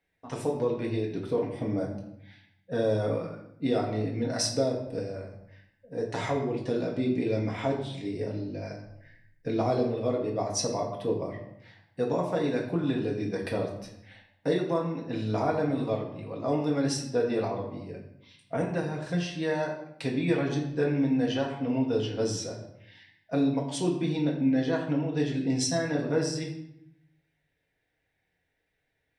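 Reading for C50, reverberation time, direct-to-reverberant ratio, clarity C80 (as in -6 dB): 6.0 dB, 0.75 s, -2.5 dB, 8.5 dB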